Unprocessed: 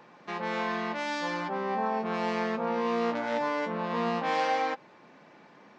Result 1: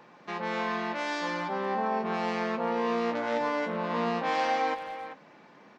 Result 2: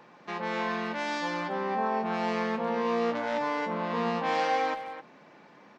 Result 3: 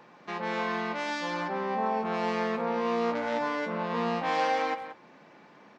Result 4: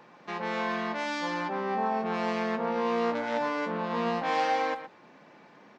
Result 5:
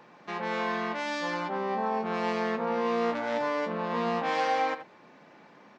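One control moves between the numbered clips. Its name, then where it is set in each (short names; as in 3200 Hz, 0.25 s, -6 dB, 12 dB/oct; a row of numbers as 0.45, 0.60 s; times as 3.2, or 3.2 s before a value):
speakerphone echo, time: 390, 260, 180, 120, 80 ms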